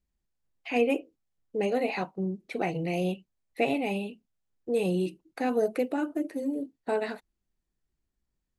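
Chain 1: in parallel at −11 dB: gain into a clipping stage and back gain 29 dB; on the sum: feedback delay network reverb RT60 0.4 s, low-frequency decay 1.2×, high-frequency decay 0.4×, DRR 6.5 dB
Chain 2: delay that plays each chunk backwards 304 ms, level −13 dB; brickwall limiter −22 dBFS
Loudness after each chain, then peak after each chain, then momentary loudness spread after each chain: −27.0, −33.0 LKFS; −12.0, −22.0 dBFS; 12, 15 LU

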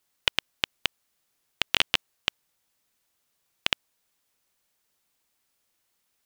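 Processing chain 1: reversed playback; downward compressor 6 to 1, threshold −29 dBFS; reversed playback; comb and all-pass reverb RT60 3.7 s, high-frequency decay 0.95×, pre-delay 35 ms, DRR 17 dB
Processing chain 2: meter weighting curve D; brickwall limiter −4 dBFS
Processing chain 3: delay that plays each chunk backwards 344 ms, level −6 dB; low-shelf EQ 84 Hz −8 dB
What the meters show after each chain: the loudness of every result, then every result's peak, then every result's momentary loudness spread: −36.5, −29.5, −29.0 LKFS; −10.5, −4.0, −1.5 dBFS; 20, 8, 14 LU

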